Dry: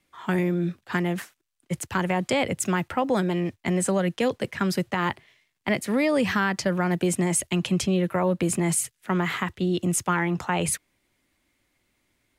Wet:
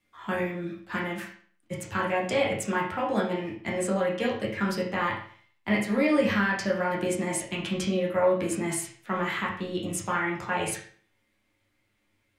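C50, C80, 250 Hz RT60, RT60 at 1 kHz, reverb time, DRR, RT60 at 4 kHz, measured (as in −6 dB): 5.5 dB, 9.5 dB, 0.50 s, 0.50 s, 0.50 s, −5.5 dB, 0.45 s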